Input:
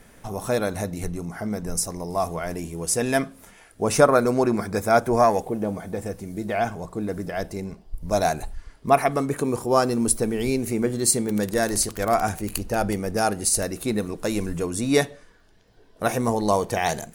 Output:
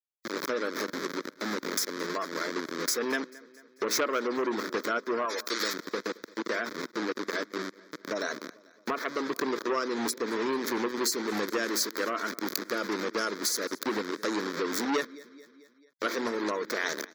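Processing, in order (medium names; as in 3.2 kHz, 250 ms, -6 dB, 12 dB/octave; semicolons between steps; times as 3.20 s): send-on-delta sampling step -24.5 dBFS; high-pass 300 Hz 24 dB/octave; spectral gate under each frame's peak -30 dB strong; 5.25–5.74 s: tilt EQ +4.5 dB/octave; compression 3:1, threshold -29 dBFS, peak gain reduction 14 dB; static phaser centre 2.8 kHz, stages 6; feedback delay 221 ms, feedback 57%, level -23 dB; transformer saturation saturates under 2.7 kHz; trim +8 dB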